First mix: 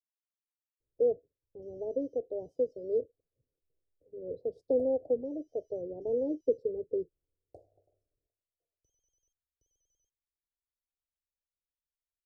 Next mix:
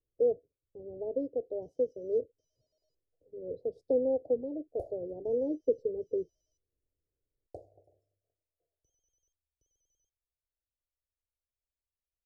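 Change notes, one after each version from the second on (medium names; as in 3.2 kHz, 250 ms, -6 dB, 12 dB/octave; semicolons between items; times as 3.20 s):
speech: entry -0.80 s; second sound +7.5 dB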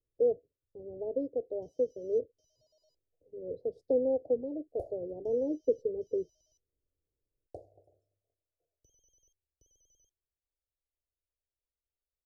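first sound +10.0 dB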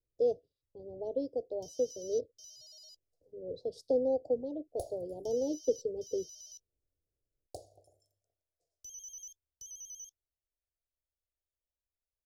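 master: remove FFT filter 150 Hz 0 dB, 440 Hz +3 dB, 4.6 kHz -24 dB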